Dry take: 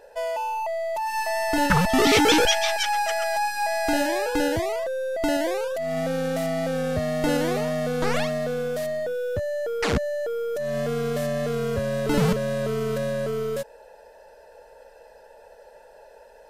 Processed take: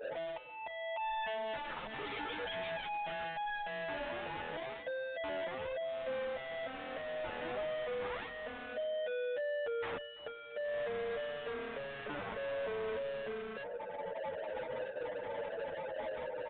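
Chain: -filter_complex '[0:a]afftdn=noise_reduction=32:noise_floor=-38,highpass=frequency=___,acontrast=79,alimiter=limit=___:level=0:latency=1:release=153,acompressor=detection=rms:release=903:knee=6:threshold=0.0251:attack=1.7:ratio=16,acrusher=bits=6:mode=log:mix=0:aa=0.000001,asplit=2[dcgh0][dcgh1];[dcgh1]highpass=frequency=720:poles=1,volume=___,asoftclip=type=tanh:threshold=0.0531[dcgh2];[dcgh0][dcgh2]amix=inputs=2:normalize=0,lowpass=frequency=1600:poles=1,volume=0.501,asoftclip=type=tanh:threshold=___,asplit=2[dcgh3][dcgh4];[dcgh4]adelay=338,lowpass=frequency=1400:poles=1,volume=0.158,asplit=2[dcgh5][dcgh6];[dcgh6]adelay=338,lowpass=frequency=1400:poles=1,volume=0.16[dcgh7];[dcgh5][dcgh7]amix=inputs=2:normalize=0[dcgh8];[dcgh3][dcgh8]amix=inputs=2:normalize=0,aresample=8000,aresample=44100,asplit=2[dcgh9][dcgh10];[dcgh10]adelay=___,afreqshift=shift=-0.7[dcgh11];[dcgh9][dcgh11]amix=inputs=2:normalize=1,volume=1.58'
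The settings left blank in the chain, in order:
420, 0.335, 25.1, 0.0106, 8.8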